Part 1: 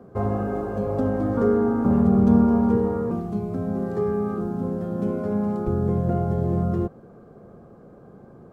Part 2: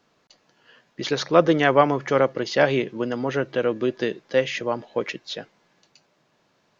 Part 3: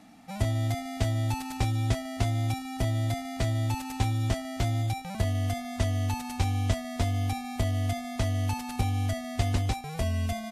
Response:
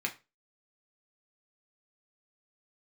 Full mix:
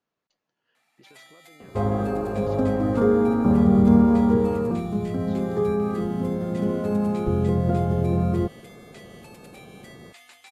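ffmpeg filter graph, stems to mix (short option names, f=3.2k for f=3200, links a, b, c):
-filter_complex "[0:a]adelay=1600,volume=1dB[a];[1:a]acompressor=threshold=-26dB:ratio=6,volume=-19.5dB[b];[2:a]highpass=1.1k,adelay=750,volume=-12.5dB,asplit=2[c][d];[d]volume=-6dB[e];[b][c]amix=inputs=2:normalize=0,equalizer=f=4.9k:t=o:w=0.77:g=-3,alimiter=level_in=20dB:limit=-24dB:level=0:latency=1:release=47,volume=-20dB,volume=0dB[f];[3:a]atrim=start_sample=2205[g];[e][g]afir=irnorm=-1:irlink=0[h];[a][f][h]amix=inputs=3:normalize=0"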